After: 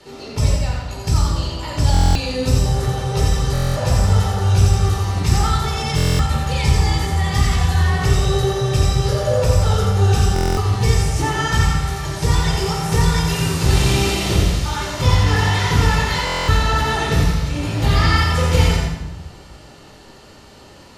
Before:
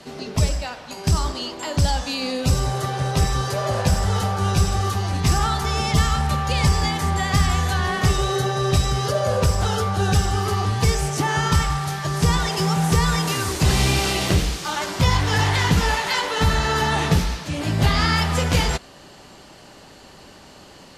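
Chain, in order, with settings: thinning echo 86 ms, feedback 40%, high-pass 1.2 kHz, level -4 dB; reverberation RT60 1.0 s, pre-delay 17 ms, DRR -0.5 dB; buffer glitch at 1.92/3.53/5.96/10.34/16.25 s, samples 1024, times 9; trim -5 dB

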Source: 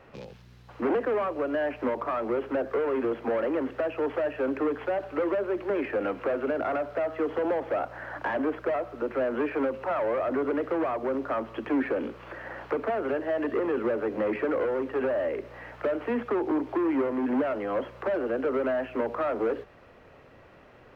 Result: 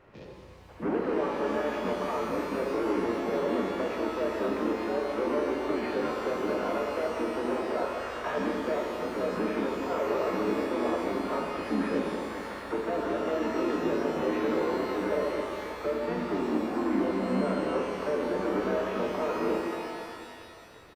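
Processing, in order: harmony voices -5 st -1 dB; pitch-shifted reverb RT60 2.4 s, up +12 st, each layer -8 dB, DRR -1 dB; trim -7.5 dB

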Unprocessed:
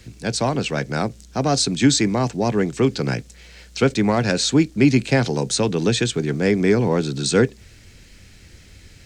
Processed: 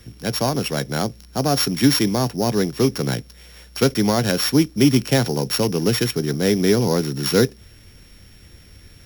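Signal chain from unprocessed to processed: sorted samples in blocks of 8 samples

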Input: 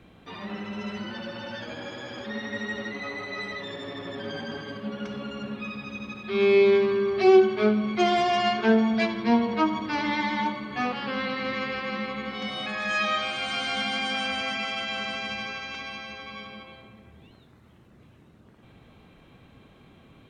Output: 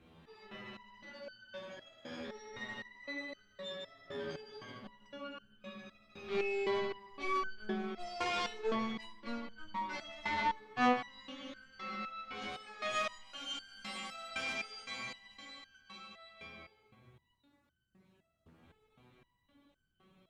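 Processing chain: Chebyshev shaper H 4 -17 dB, 5 -17 dB, 7 -25 dB, 8 -20 dB, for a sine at -7 dBFS; pre-echo 204 ms -23 dB; resonator arpeggio 3.9 Hz 82–1500 Hz; trim -1.5 dB

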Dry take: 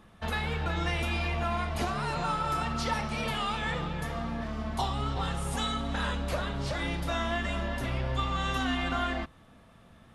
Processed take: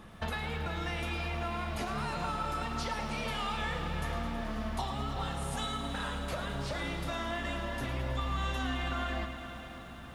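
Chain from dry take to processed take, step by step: compression 6:1, threshold -38 dBFS, peak gain reduction 12.5 dB; echo that smears into a reverb 542 ms, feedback 64%, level -14 dB; bit-crushed delay 107 ms, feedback 80%, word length 11-bit, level -11.5 dB; trim +5 dB

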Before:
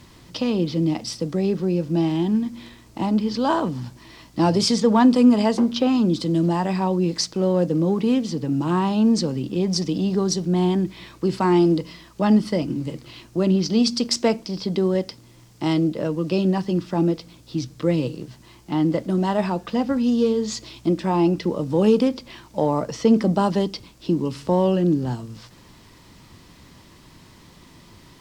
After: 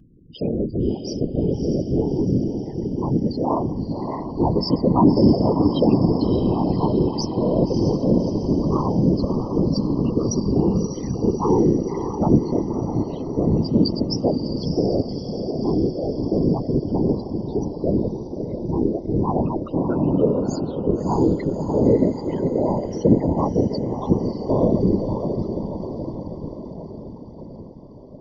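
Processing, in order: loudest bins only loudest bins 8; echo that smears into a reverb 613 ms, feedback 62%, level -6.5 dB; whisper effect

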